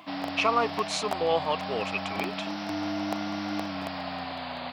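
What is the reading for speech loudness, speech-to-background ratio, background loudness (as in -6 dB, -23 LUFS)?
-29.5 LUFS, 4.0 dB, -33.5 LUFS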